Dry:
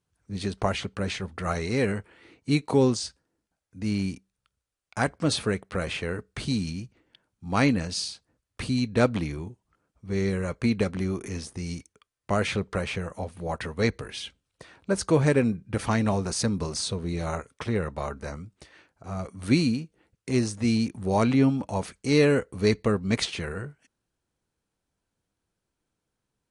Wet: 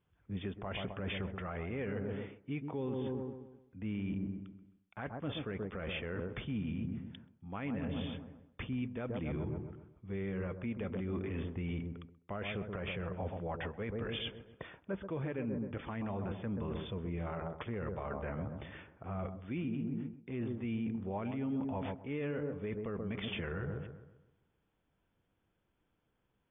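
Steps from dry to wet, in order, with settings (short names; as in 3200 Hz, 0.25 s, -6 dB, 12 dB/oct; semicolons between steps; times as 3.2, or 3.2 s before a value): brick-wall FIR low-pass 3600 Hz; dark delay 0.13 s, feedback 41%, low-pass 940 Hz, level -8 dB; reverse; compressor 8:1, threshold -36 dBFS, peak gain reduction 20 dB; reverse; limiter -31.5 dBFS, peak gain reduction 7.5 dB; gain +2.5 dB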